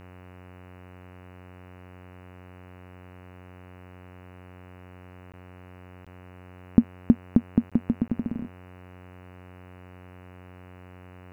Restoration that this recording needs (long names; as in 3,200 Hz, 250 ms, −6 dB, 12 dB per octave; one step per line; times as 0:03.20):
hum removal 91 Hz, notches 32
repair the gap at 0:05.32/0:06.05/0:07.70/0:08.08, 16 ms